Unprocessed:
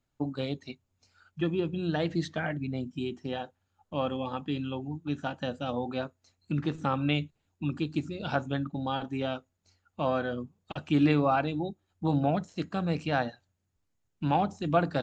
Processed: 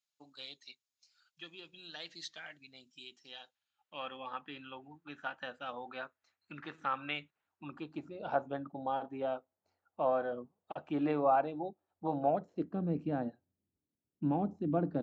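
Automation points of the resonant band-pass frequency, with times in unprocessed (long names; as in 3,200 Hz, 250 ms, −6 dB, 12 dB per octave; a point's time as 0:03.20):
resonant band-pass, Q 1.4
0:03.38 4,900 Hz
0:04.26 1,600 Hz
0:07.19 1,600 Hz
0:08.24 690 Hz
0:12.25 690 Hz
0:12.79 280 Hz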